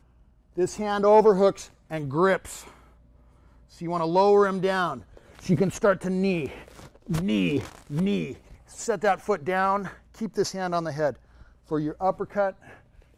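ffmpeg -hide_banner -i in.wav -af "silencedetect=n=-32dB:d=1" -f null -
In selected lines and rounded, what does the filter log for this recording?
silence_start: 2.60
silence_end: 3.82 | silence_duration: 1.21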